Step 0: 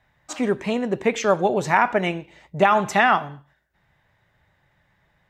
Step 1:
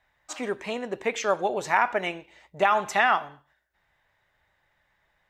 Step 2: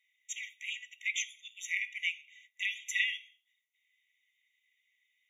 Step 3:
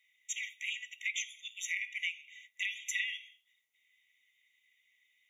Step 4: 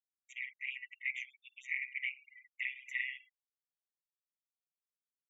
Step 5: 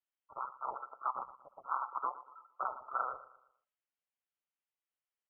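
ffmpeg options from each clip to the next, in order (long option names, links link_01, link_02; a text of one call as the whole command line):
ffmpeg -i in.wav -af "equalizer=frequency=140:width_type=o:width=2.3:gain=-12.5,volume=-3dB" out.wav
ffmpeg -i in.wav -af "afftfilt=real='re*eq(mod(floor(b*sr/1024/1900),2),1)':imag='im*eq(mod(floor(b*sr/1024/1900),2),1)':win_size=1024:overlap=0.75" out.wav
ffmpeg -i in.wav -af "acompressor=threshold=-38dB:ratio=3,volume=4dB" out.wav
ffmpeg -i in.wav -af "tremolo=f=130:d=0.75,afftfilt=real='re*gte(hypot(re,im),0.00562)':imag='im*gte(hypot(re,im),0.00562)':win_size=1024:overlap=0.75,highshelf=frequency=3200:width_type=q:width=3:gain=-12.5,volume=-4.5dB" out.wav
ffmpeg -i in.wav -af "aecho=1:1:116|232|348|464:0.15|0.0613|0.0252|0.0103,lowpass=frequency=2800:width_type=q:width=0.5098,lowpass=frequency=2800:width_type=q:width=0.6013,lowpass=frequency=2800:width_type=q:width=0.9,lowpass=frequency=2800:width_type=q:width=2.563,afreqshift=-3300,volume=2dB" out.wav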